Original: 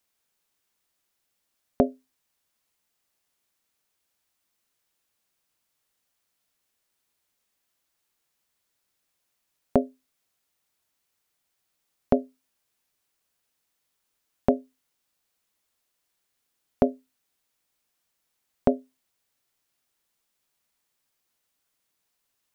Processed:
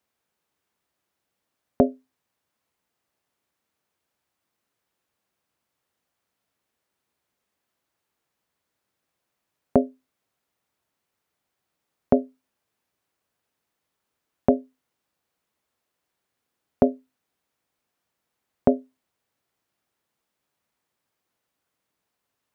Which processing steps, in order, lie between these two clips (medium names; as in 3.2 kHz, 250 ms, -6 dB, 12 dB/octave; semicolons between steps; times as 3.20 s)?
high-pass 64 Hz; treble shelf 2.4 kHz -11.5 dB; in parallel at -2.5 dB: peak limiter -12.5 dBFS, peak gain reduction 6.5 dB